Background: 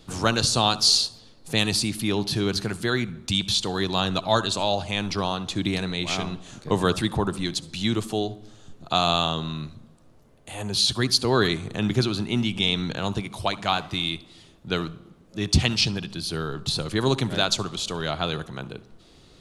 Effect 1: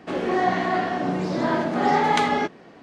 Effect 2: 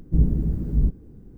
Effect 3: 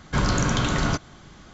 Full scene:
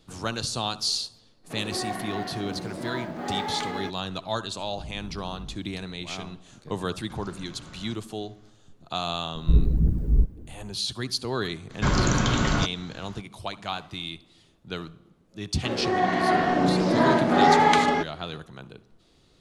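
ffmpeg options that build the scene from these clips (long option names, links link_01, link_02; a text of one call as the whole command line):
ffmpeg -i bed.wav -i cue0.wav -i cue1.wav -i cue2.wav -filter_complex "[1:a]asplit=2[link_01][link_02];[2:a]asplit=2[link_03][link_04];[3:a]asplit=2[link_05][link_06];[0:a]volume=-8dB[link_07];[link_01]acrusher=bits=9:mode=log:mix=0:aa=0.000001[link_08];[link_03]acompressor=threshold=-31dB:ratio=6:attack=3.2:release=140:knee=1:detection=peak[link_09];[link_05]acompressor=threshold=-27dB:ratio=6:attack=3.2:release=140:knee=1:detection=peak[link_10];[link_04]aphaser=in_gain=1:out_gain=1:delay=3:decay=0.5:speed=1.9:type=triangular[link_11];[link_02]dynaudnorm=framelen=120:gausssize=11:maxgain=11.5dB[link_12];[link_08]atrim=end=2.82,asetpts=PTS-STARTPTS,volume=-11dB,afade=type=in:duration=0.02,afade=type=out:start_time=2.8:duration=0.02,adelay=1430[link_13];[link_09]atrim=end=1.37,asetpts=PTS-STARTPTS,volume=-6.5dB,afade=type=in:duration=0.004:curve=hsin,afade=type=out:start_time=1.366:duration=0.004:curve=hsin,adelay=4660[link_14];[link_10]atrim=end=1.53,asetpts=PTS-STARTPTS,volume=-15dB,afade=type=in:duration=0.004:curve=hsin,afade=type=out:start_time=1.526:duration=0.004:curve=hsin,adelay=6970[link_15];[link_11]atrim=end=1.37,asetpts=PTS-STARTPTS,volume=-2dB,afade=type=in:duration=0.004:curve=hsin,afade=type=out:start_time=1.366:duration=0.004:curve=hsin,adelay=9350[link_16];[link_06]atrim=end=1.53,asetpts=PTS-STARTPTS,volume=-0.5dB,afade=type=in:duration=0.02,afade=type=out:start_time=1.51:duration=0.02,adelay=11690[link_17];[link_12]atrim=end=2.82,asetpts=PTS-STARTPTS,volume=-4dB,afade=type=in:duration=0.004:curve=hsin,afade=type=out:start_time=2.816:duration=0.004:curve=hsin,adelay=686196S[link_18];[link_07][link_13][link_14][link_15][link_16][link_17][link_18]amix=inputs=7:normalize=0" out.wav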